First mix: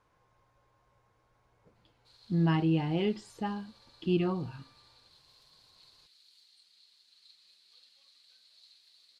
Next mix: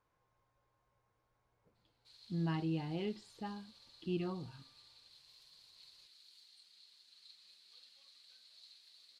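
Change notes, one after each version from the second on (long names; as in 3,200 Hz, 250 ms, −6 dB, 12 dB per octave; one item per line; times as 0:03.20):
speech −9.5 dB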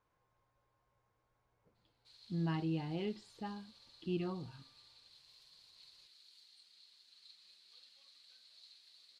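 master: add high-shelf EQ 11,000 Hz −5.5 dB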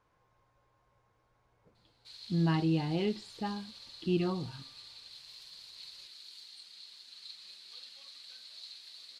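speech +7.5 dB
background +12.0 dB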